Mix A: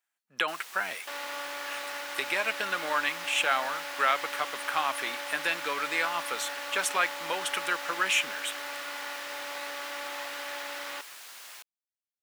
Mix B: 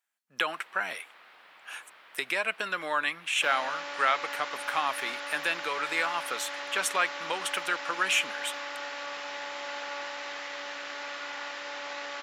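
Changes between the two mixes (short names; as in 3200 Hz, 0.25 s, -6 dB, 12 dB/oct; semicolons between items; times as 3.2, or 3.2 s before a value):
first sound: add air absorption 450 m; second sound: entry +2.35 s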